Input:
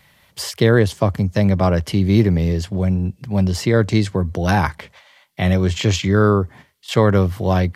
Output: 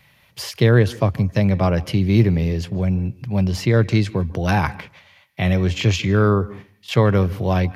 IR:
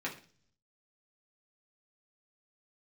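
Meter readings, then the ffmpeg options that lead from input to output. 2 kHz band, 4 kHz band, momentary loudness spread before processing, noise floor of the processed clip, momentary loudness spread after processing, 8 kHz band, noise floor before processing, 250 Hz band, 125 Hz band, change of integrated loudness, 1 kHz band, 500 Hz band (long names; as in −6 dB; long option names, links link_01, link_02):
−1.0 dB, −2.0 dB, 7 LU, −56 dBFS, 8 LU, −4.5 dB, −56 dBFS, −2.0 dB, 0.0 dB, −1.0 dB, −2.5 dB, −2.5 dB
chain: -filter_complex "[0:a]equalizer=frequency=125:width_type=o:width=0.33:gain=7,equalizer=frequency=2500:width_type=o:width=0.33:gain=6,equalizer=frequency=8000:width_type=o:width=0.33:gain=-7,asplit=2[link_01][link_02];[1:a]atrim=start_sample=2205,adelay=143[link_03];[link_02][link_03]afir=irnorm=-1:irlink=0,volume=-23dB[link_04];[link_01][link_04]amix=inputs=2:normalize=0,volume=-2.5dB"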